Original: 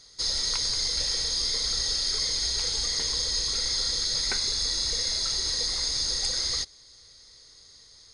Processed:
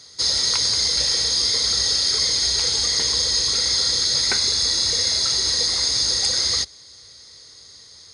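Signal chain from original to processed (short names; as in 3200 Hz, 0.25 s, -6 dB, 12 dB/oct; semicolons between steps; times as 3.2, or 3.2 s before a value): HPF 63 Hz 24 dB/oct; gain +7.5 dB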